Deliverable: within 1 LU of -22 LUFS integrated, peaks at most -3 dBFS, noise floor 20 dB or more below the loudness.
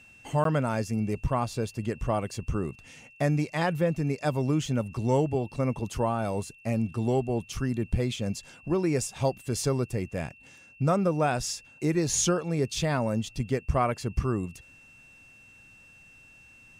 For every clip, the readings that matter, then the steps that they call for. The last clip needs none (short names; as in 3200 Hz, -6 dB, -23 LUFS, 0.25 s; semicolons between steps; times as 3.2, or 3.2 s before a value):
dropouts 1; longest dropout 13 ms; steady tone 2700 Hz; tone level -52 dBFS; loudness -28.5 LUFS; peak -12.5 dBFS; loudness target -22.0 LUFS
-> interpolate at 0.44, 13 ms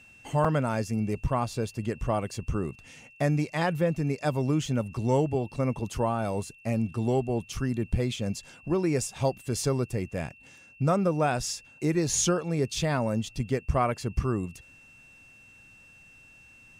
dropouts 0; steady tone 2700 Hz; tone level -52 dBFS
-> notch 2700 Hz, Q 30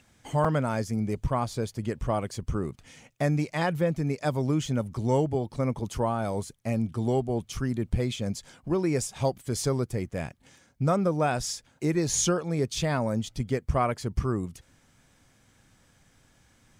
steady tone none; loudness -28.5 LUFS; peak -12.5 dBFS; loudness target -22.0 LUFS
-> gain +6.5 dB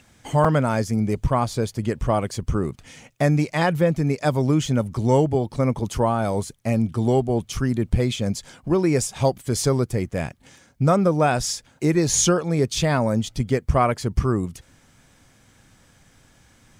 loudness -22.0 LUFS; peak -6.0 dBFS; noise floor -57 dBFS